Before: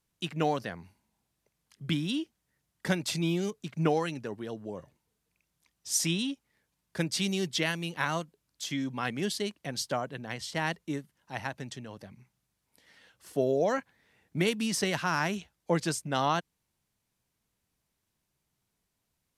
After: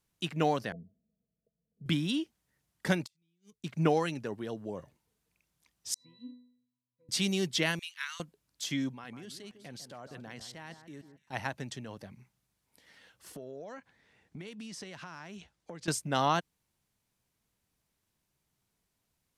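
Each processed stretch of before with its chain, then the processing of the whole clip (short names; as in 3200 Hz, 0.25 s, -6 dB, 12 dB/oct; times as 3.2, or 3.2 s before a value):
0.72–1.86 rippled Chebyshev low-pass 680 Hz, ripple 9 dB + comb 4.5 ms, depth 36%
3.06–3.64 passive tone stack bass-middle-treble 6-0-2 + flipped gate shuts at -40 dBFS, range -31 dB
5.94–7.09 notch 2000 Hz, Q 14 + auto swell 0.487 s + octave resonator B, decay 0.63 s
7.79–8.2 Bessel high-pass 2300 Hz, order 8 + high shelf 8400 Hz -6.5 dB
8.89–11.33 level quantiser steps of 23 dB + echo with dull and thin repeats by turns 0.15 s, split 1800 Hz, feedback 50%, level -10 dB
13.36–15.88 LPF 8400 Hz + compressor, threshold -42 dBFS
whole clip: dry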